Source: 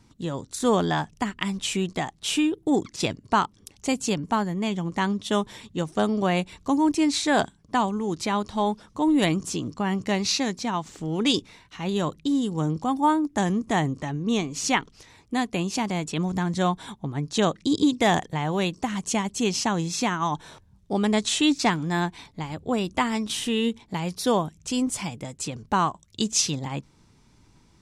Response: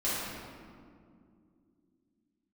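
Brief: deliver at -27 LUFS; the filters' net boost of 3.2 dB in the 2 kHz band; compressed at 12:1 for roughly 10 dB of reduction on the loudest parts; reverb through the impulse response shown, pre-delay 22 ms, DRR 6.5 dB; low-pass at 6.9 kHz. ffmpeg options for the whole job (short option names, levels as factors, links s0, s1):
-filter_complex "[0:a]lowpass=6900,equalizer=f=2000:t=o:g=4,acompressor=threshold=0.0562:ratio=12,asplit=2[s0][s1];[1:a]atrim=start_sample=2205,adelay=22[s2];[s1][s2]afir=irnorm=-1:irlink=0,volume=0.168[s3];[s0][s3]amix=inputs=2:normalize=0,volume=1.33"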